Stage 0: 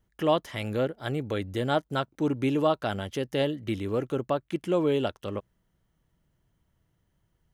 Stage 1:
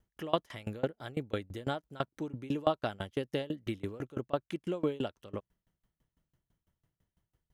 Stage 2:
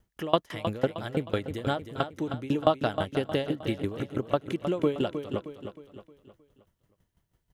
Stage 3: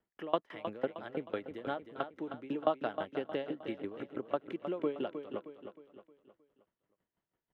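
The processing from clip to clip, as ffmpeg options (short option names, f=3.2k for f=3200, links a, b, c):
-af "aeval=exprs='val(0)*pow(10,-26*if(lt(mod(6*n/s,1),2*abs(6)/1000),1-mod(6*n/s,1)/(2*abs(6)/1000),(mod(6*n/s,1)-2*abs(6)/1000)/(1-2*abs(6)/1000))/20)':c=same"
-af "aecho=1:1:312|624|936|1248|1560:0.355|0.156|0.0687|0.0302|0.0133,volume=6dB"
-filter_complex "[0:a]acrossover=split=210 3100:gain=0.112 1 0.0891[a][b][c];[a][b][c]amix=inputs=3:normalize=0,volume=-7dB"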